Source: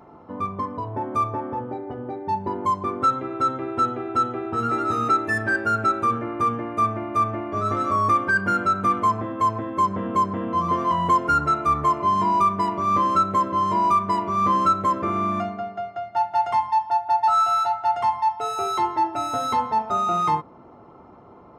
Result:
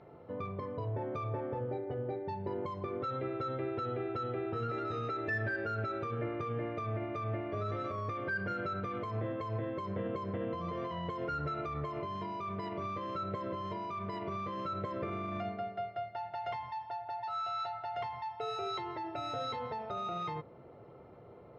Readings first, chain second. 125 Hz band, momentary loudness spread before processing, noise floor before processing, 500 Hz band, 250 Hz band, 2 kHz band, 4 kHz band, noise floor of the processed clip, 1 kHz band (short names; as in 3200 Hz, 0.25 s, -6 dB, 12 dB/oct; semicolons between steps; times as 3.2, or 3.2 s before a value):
-6.5 dB, 8 LU, -47 dBFS, -7.5 dB, -12.0 dB, -13.0 dB, -9.5 dB, -54 dBFS, -18.5 dB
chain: air absorption 110 m; limiter -21.5 dBFS, peak gain reduction 11.5 dB; graphic EQ 125/250/500/1000/2000/4000/8000 Hz +9/-6/+10/-8/+6/+8/-6 dB; gain -9 dB